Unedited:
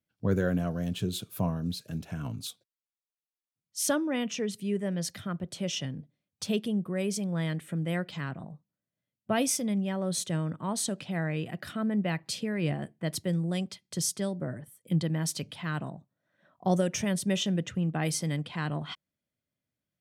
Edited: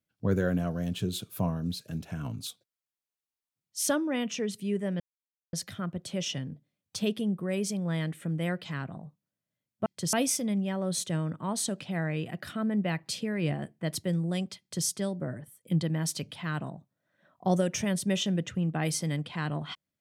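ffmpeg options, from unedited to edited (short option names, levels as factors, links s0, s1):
-filter_complex "[0:a]asplit=4[s0][s1][s2][s3];[s0]atrim=end=5,asetpts=PTS-STARTPTS,afade=t=out:st=4.996:d=0.004:c=hsin,apad=pad_dur=0.53[s4];[s1]atrim=start=5:end=9.332,asetpts=PTS-STARTPTS,afade=t=in:d=0.004:c=hsin[s5];[s2]atrim=start=13.798:end=14.072[s6];[s3]atrim=start=9.328[s7];[s4][s5]concat=n=2:v=0:a=1[s8];[s8][s6]acrossfade=d=0.004:c1=hsin:c2=hsin[s9];[s9][s7]acrossfade=d=0.004:c1=hsin:c2=hsin"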